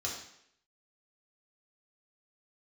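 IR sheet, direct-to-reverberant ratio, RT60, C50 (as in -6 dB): -3.5 dB, 0.70 s, 4.5 dB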